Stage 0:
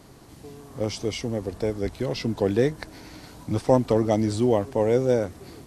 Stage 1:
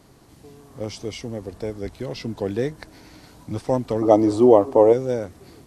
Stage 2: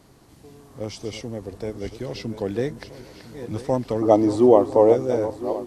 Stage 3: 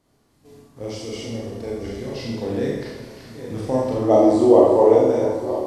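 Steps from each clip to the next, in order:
gain on a spectral selection 0:04.02–0:04.93, 240–1,300 Hz +12 dB; level −3 dB
feedback delay that plays each chunk backwards 503 ms, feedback 60%, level −11.5 dB; level −1 dB
noise gate −45 dBFS, range −11 dB; four-comb reverb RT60 1 s, combs from 27 ms, DRR −4.5 dB; level −3.5 dB

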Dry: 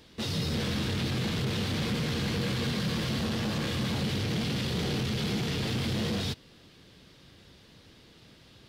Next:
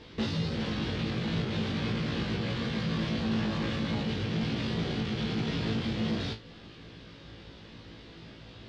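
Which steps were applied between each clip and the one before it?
downward compressor 6 to 1, threshold −36 dBFS, peak gain reduction 9 dB
high-frequency loss of the air 150 metres
flutter between parallel walls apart 3.1 metres, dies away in 0.23 s
level +6 dB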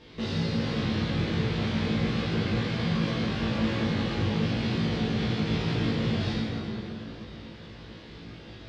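dense smooth reverb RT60 3.6 s, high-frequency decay 0.55×, DRR −6 dB
level −3.5 dB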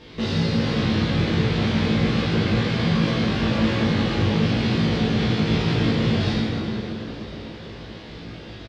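echo with shifted repeats 487 ms, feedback 54%, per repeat +96 Hz, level −18 dB
level +6.5 dB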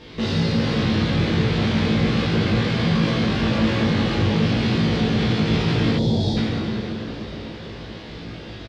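gain on a spectral selection 0:05.98–0:06.37, 990–3,200 Hz −17 dB
in parallel at −10 dB: soft clipping −25 dBFS, distortion −8 dB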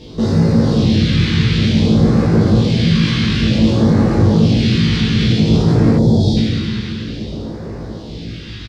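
all-pass phaser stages 2, 0.55 Hz, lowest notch 600–3,000 Hz
level +7.5 dB

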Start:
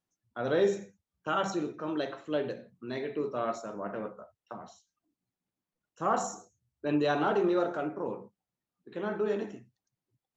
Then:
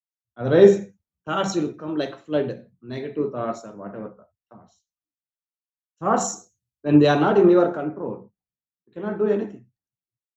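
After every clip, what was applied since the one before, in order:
low-shelf EQ 380 Hz +9 dB
multiband upward and downward expander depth 100%
level +3.5 dB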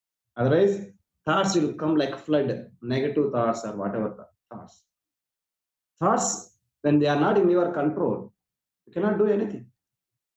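downward compressor 5 to 1, threshold −26 dBFS, peak gain reduction 17 dB
level +7 dB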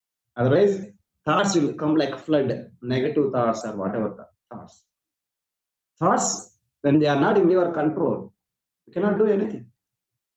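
pitch modulation by a square or saw wave saw down 3.6 Hz, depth 100 cents
level +2 dB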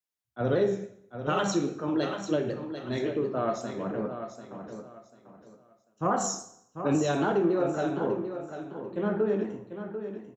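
on a send: repeating echo 743 ms, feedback 26%, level −9.5 dB
on the sum: dense smooth reverb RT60 0.75 s, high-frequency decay 0.9×, DRR 8 dB
level −7.5 dB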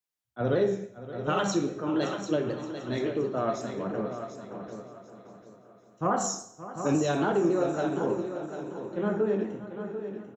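repeating echo 571 ms, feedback 49%, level −15 dB

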